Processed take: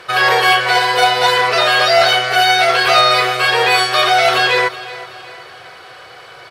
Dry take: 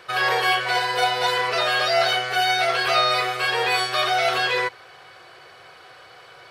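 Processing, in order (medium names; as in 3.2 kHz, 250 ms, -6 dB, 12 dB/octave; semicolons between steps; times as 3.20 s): one-sided clip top -13.5 dBFS; feedback delay 373 ms, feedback 46%, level -17 dB; trim +8.5 dB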